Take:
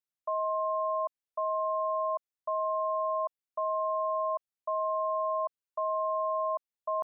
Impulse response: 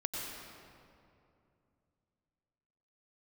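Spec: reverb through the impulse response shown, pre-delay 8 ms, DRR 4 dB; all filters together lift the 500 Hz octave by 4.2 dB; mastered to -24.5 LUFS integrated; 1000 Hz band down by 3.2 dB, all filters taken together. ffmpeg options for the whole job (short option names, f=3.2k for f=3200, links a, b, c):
-filter_complex "[0:a]equalizer=f=500:t=o:g=9,equalizer=f=1k:t=o:g=-5,asplit=2[a][b];[1:a]atrim=start_sample=2205,adelay=8[c];[b][c]afir=irnorm=-1:irlink=0,volume=-7dB[d];[a][d]amix=inputs=2:normalize=0,volume=4.5dB"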